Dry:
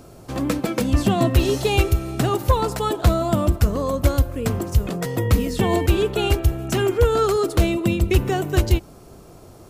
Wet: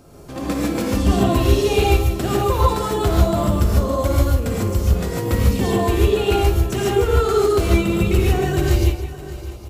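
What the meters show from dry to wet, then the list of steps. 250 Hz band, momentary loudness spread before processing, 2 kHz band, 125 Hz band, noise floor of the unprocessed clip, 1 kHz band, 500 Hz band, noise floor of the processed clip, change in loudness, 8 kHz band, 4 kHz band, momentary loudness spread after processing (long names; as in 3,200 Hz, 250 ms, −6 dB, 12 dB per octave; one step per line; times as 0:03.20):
+2.0 dB, 5 LU, +1.0 dB, +2.0 dB, −45 dBFS, +2.5 dB, +2.5 dB, −34 dBFS, +2.0 dB, +1.5 dB, +1.0 dB, 5 LU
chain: multi-tap delay 55/164/608/807 ms −12.5/−12.5/−16/−19.5 dB
reverb whose tail is shaped and stops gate 170 ms rising, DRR −4 dB
level −4.5 dB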